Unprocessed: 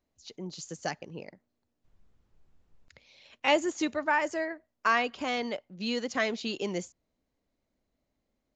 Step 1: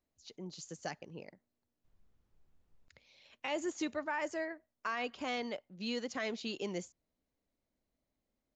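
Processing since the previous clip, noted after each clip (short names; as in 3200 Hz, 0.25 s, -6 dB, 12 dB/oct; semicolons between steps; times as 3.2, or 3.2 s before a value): limiter -20 dBFS, peak gain reduction 9 dB; gain -6 dB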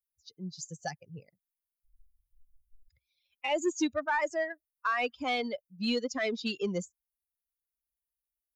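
per-bin expansion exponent 2; in parallel at -7 dB: soft clip -39.5 dBFS, distortion -11 dB; on the sum: gain +8 dB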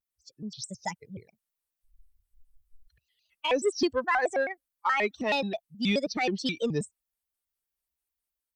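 AGC gain up to 3.5 dB; shaped vibrato square 4.7 Hz, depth 250 cents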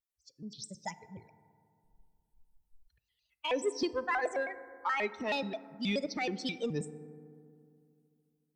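FDN reverb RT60 2.4 s, low-frequency decay 1.2×, high-frequency decay 0.3×, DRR 14 dB; gain -6 dB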